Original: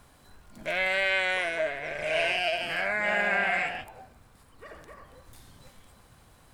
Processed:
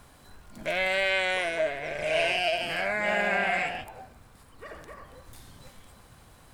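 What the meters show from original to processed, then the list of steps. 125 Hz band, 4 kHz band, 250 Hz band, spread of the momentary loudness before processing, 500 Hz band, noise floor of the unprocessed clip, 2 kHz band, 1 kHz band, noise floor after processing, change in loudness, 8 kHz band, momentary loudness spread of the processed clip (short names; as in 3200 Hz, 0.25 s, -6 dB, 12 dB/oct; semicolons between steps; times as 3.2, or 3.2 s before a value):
+3.0 dB, +1.5 dB, +3.0 dB, 8 LU, +2.0 dB, -58 dBFS, -1.0 dB, +1.5 dB, -55 dBFS, 0.0 dB, +3.0 dB, 20 LU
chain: dynamic EQ 1600 Hz, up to -5 dB, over -40 dBFS, Q 1; gain +3 dB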